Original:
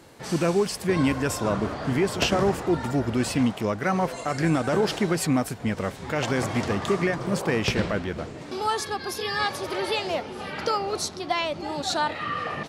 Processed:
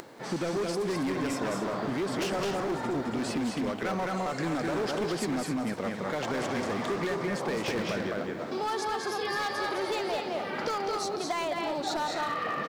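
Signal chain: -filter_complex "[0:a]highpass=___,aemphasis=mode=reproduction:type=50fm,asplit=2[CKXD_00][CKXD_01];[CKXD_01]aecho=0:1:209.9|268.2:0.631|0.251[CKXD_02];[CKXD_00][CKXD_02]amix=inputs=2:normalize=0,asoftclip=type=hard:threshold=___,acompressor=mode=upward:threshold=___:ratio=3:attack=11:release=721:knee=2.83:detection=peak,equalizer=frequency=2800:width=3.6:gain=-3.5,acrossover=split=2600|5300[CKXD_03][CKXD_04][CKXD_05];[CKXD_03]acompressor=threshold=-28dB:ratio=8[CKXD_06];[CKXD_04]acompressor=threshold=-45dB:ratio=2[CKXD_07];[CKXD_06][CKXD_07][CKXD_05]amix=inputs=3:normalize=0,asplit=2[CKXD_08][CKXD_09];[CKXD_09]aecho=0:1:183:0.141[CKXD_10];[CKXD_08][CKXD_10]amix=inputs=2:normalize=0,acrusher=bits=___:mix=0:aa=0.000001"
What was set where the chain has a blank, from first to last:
190, -21.5dB, -44dB, 10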